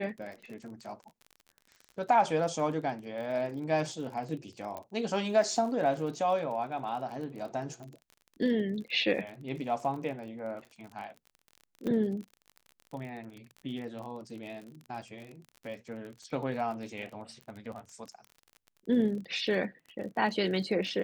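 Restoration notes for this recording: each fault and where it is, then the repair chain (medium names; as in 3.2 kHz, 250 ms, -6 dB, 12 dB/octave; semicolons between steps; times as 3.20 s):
crackle 37 per s -40 dBFS
4.77 s: pop -26 dBFS
11.87 s: pop -23 dBFS
17.41 s: pop -33 dBFS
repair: de-click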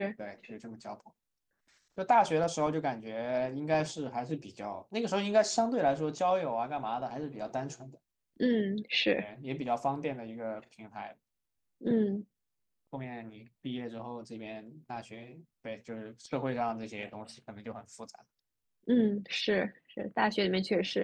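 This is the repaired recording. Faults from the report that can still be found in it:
4.77 s: pop
11.87 s: pop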